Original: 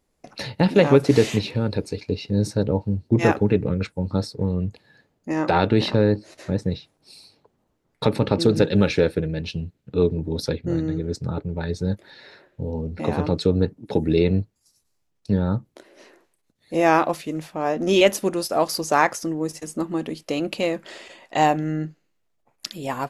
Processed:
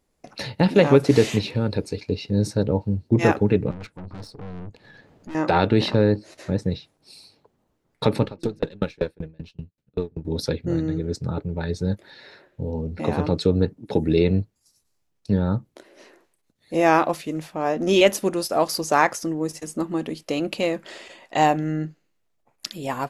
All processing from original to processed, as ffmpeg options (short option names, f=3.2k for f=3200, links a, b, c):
-filter_complex "[0:a]asettb=1/sr,asplit=3[a][b][c];[a]atrim=end=3.714[d];[b]atrim=start=3.71:end=5.35,asetpts=PTS-STARTPTS,afade=t=in:d=0.004:c=qsin,afade=t=out:st=1.636:d=0.004:c=qsin,lowpass=f=3.2k:p=1,acompressor=mode=upward:threshold=-33dB:ratio=2.5:attack=3.2:release=140:knee=2.83:detection=peak,aeval=exprs='(tanh(50.1*val(0)+0.65)-tanh(0.65))/50.1':c=same[e];[c]atrim=start=5.346[f];[d][e]acrossfade=d=0.004:c1=hsin:c2=qsin[g];[g][f]acrossfade=d=0.004:c1=qsin:c2=hsin,asettb=1/sr,asplit=3[h][i][j];[h]atrim=end=8.244[k];[i]atrim=start=8.24:end=10.25,asetpts=PTS-STARTPTS,afade=t=in:d=0.004:c=qsin,afade=t=out:st=2.006:d=0.004:c=qsin,aeval=exprs='if(lt(val(0),0),0.708*val(0),val(0))':c=same,aeval=exprs='val(0)*pow(10,-35*if(lt(mod(5.2*n/s,1),2*abs(5.2)/1000),1-mod(5.2*n/s,1)/(2*abs(5.2)/1000),(mod(5.2*n/s,1)-2*abs(5.2)/1000)/(1-2*abs(5.2)/1000))/20)':c=same[l];[j]atrim=start=10.246[m];[k][l]acrossfade=d=0.004:c1=hsin:c2=qsin[n];[n][m]acrossfade=d=0.004:c1=qsin:c2=hsin"